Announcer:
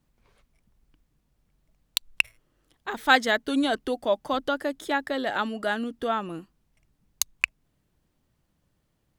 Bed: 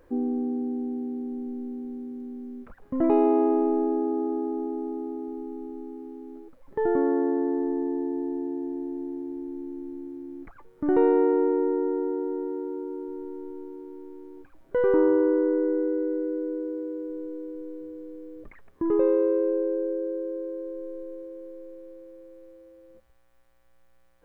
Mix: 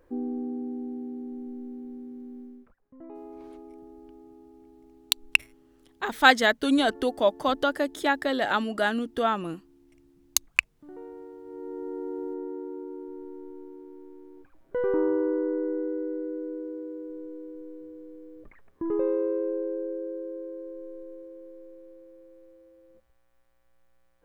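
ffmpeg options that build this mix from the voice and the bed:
-filter_complex "[0:a]adelay=3150,volume=2dB[a];[1:a]volume=14dB,afade=t=out:st=2.4:d=0.38:silence=0.11885,afade=t=in:st=11.44:d=0.81:silence=0.11885[b];[a][b]amix=inputs=2:normalize=0"

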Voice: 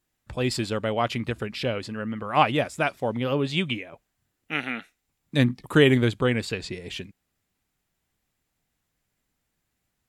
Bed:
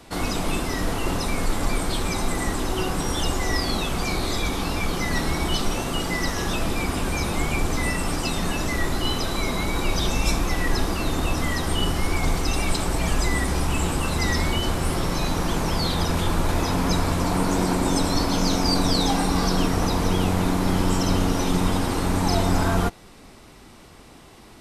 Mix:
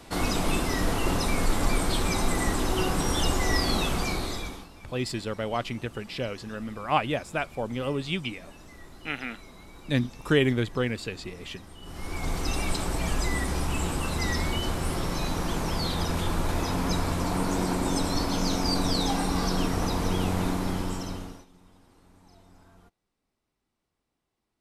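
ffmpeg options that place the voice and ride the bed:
-filter_complex "[0:a]adelay=4550,volume=-4.5dB[a];[1:a]volume=17.5dB,afade=t=out:st=3.87:d=0.81:silence=0.0749894,afade=t=in:st=11.82:d=0.65:silence=0.11885,afade=t=out:st=20.45:d=1.01:silence=0.0316228[b];[a][b]amix=inputs=2:normalize=0"

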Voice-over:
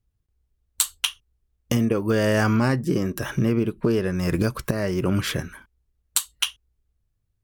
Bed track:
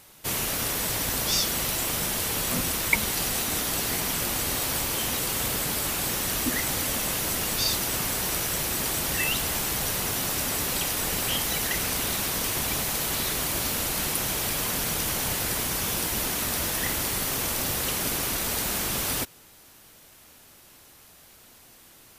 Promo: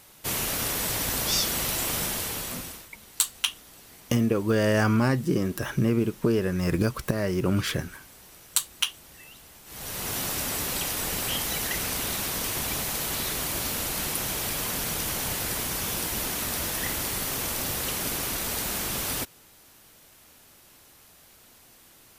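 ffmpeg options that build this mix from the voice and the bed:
-filter_complex "[0:a]adelay=2400,volume=-2dB[a];[1:a]volume=20dB,afade=t=out:st=1.99:d=0.89:silence=0.0794328,afade=t=in:st=9.65:d=0.51:silence=0.0944061[b];[a][b]amix=inputs=2:normalize=0"

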